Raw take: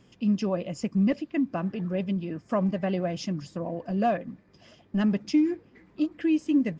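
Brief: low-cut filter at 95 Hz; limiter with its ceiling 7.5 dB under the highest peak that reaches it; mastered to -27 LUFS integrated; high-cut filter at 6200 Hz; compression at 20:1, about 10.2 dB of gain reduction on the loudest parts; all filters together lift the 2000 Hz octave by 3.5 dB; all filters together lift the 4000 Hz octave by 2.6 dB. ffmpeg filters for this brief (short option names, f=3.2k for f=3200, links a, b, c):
-af "highpass=95,lowpass=6.2k,equalizer=f=2k:t=o:g=3.5,equalizer=f=4k:t=o:g=3.5,acompressor=threshold=-29dB:ratio=20,volume=10dB,alimiter=limit=-17.5dB:level=0:latency=1"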